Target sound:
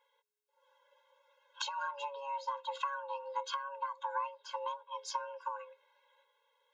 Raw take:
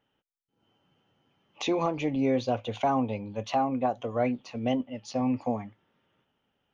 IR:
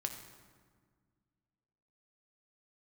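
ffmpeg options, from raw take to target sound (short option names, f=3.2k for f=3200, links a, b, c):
-af "equalizer=f=710:w=1.5:g=2.5,afreqshift=420,acompressor=threshold=-36dB:ratio=10,afftfilt=real='re*eq(mod(floor(b*sr/1024/280),2),1)':imag='im*eq(mod(floor(b*sr/1024/280),2),1)':win_size=1024:overlap=0.75,volume=4.5dB"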